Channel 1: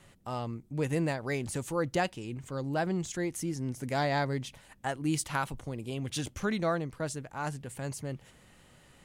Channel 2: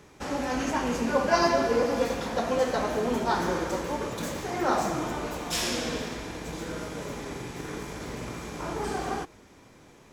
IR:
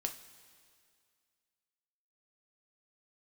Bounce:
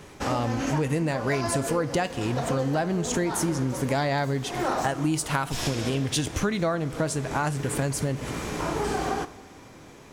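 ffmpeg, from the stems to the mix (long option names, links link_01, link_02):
-filter_complex "[0:a]dynaudnorm=framelen=210:gausssize=3:maxgain=11dB,volume=2dB,asplit=3[link_01][link_02][link_03];[link_02]volume=-6dB[link_04];[1:a]volume=2.5dB,asplit=2[link_05][link_06];[link_06]volume=-6dB[link_07];[link_03]apad=whole_len=446565[link_08];[link_05][link_08]sidechaincompress=threshold=-22dB:ratio=8:attack=16:release=662[link_09];[2:a]atrim=start_sample=2205[link_10];[link_04][link_07]amix=inputs=2:normalize=0[link_11];[link_11][link_10]afir=irnorm=-1:irlink=0[link_12];[link_01][link_09][link_12]amix=inputs=3:normalize=0,acompressor=threshold=-23dB:ratio=6"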